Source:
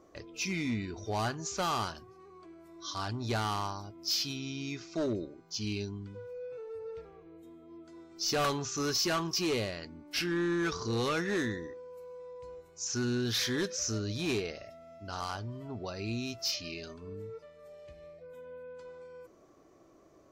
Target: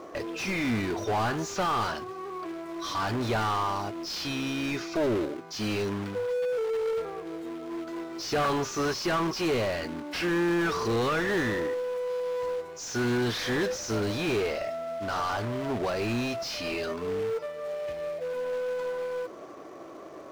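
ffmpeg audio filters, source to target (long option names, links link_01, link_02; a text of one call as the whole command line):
ffmpeg -i in.wav -filter_complex "[0:a]acrusher=bits=3:mode=log:mix=0:aa=0.000001,asplit=2[link_01][link_02];[link_02]highpass=frequency=720:poles=1,volume=27dB,asoftclip=type=tanh:threshold=-20.5dB[link_03];[link_01][link_03]amix=inputs=2:normalize=0,lowpass=frequency=1300:poles=1,volume=-6dB,volume=1.5dB" out.wav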